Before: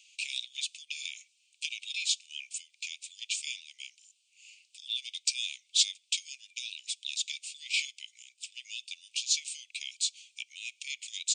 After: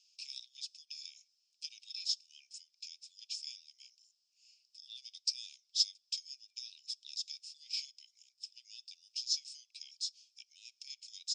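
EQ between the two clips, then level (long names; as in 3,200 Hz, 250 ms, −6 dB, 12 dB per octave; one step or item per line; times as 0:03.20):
resonant band-pass 5,200 Hz, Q 14
+5.5 dB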